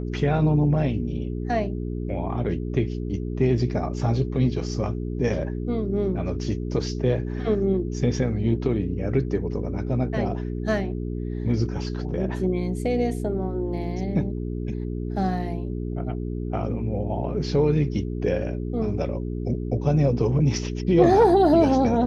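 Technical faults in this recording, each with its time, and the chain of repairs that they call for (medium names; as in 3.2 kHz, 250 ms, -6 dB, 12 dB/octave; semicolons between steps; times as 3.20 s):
hum 60 Hz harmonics 7 -29 dBFS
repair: de-hum 60 Hz, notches 7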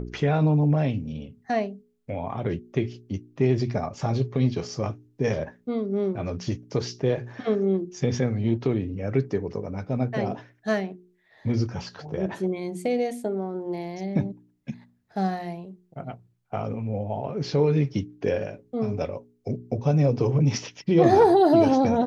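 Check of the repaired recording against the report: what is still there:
nothing left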